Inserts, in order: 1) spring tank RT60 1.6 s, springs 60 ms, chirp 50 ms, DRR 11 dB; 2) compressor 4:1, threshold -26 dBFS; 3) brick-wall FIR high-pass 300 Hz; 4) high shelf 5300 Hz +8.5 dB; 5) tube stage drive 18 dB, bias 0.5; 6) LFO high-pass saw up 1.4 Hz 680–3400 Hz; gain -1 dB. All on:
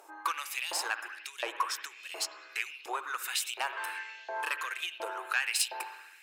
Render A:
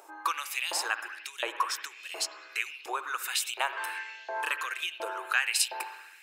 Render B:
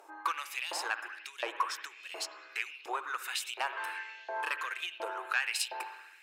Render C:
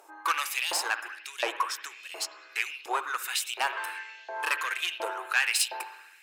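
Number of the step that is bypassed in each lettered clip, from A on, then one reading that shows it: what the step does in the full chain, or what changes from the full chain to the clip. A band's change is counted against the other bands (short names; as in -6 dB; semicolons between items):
5, loudness change +2.5 LU; 4, 8 kHz band -5.5 dB; 2, mean gain reduction 3.0 dB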